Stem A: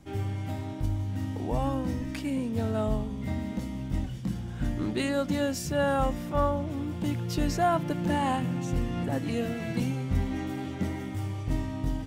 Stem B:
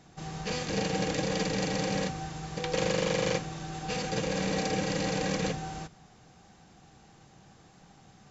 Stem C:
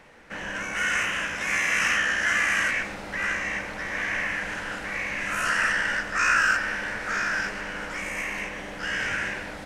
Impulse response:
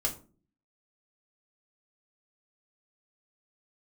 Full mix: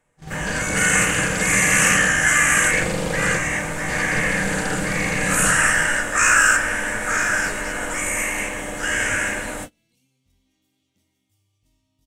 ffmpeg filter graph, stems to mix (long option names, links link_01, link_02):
-filter_complex "[0:a]aexciter=amount=4.3:drive=8.2:freq=2400,alimiter=limit=-17dB:level=0:latency=1:release=13,adelay=150,volume=-16.5dB,asplit=2[link_01][link_02];[link_02]volume=-14.5dB[link_03];[1:a]lowshelf=frequency=160:gain=11.5,volume=0.5dB[link_04];[2:a]highshelf=frequency=6200:width_type=q:width=3:gain=9,volume=2dB,asplit=2[link_05][link_06];[link_06]volume=-5dB[link_07];[3:a]atrim=start_sample=2205[link_08];[link_03][link_07]amix=inputs=2:normalize=0[link_09];[link_09][link_08]afir=irnorm=-1:irlink=0[link_10];[link_01][link_04][link_05][link_10]amix=inputs=4:normalize=0,agate=range=-25dB:threshold=-32dB:ratio=16:detection=peak"